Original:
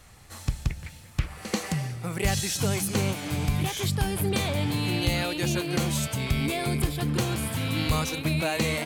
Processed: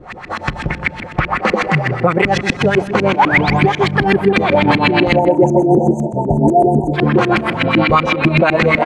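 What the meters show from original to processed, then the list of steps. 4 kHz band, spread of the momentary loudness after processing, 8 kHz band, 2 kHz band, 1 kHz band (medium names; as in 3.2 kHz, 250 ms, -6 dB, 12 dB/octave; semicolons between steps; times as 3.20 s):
+6.5 dB, 8 LU, no reading, +16.5 dB, +20.0 dB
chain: RIAA curve recording; spectral selection erased 5.14–6.94 s, 950–6000 Hz; comb 5.6 ms, depth 37%; compression 2.5:1, threshold -32 dBFS, peak gain reduction 13 dB; tremolo 6.8 Hz, depth 50%; painted sound rise, 3.19–3.61 s, 760–9000 Hz -37 dBFS; LFO low-pass saw up 8 Hz 230–2400 Hz; distance through air 52 m; on a send: filtered feedback delay 158 ms, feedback 62%, low-pass 1.5 kHz, level -15 dB; on the sum: loudness maximiser +28 dB; trim -1 dB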